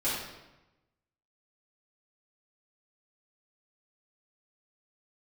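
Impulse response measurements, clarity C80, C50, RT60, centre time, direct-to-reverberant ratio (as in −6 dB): 3.0 dB, 0.0 dB, 1.0 s, 67 ms, −12.0 dB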